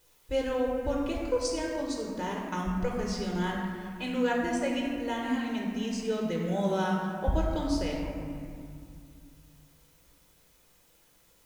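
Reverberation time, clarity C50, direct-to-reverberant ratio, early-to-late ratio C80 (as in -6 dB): 2.4 s, 1.0 dB, -1.5 dB, 2.5 dB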